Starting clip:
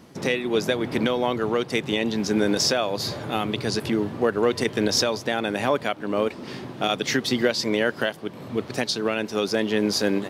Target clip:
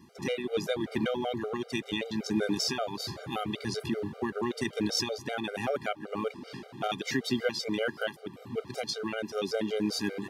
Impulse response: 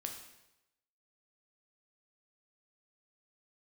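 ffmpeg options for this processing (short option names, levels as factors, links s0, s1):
-af "bandreject=f=590:w=18,afftfilt=real='re*gt(sin(2*PI*5.2*pts/sr)*(1-2*mod(floor(b*sr/1024/400),2)),0)':imag='im*gt(sin(2*PI*5.2*pts/sr)*(1-2*mod(floor(b*sr/1024/400),2)),0)':win_size=1024:overlap=0.75,volume=0.562"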